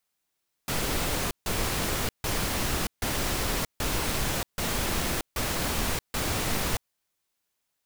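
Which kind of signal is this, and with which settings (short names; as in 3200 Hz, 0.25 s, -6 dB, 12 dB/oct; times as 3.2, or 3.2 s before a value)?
noise bursts pink, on 0.63 s, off 0.15 s, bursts 8, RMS -28 dBFS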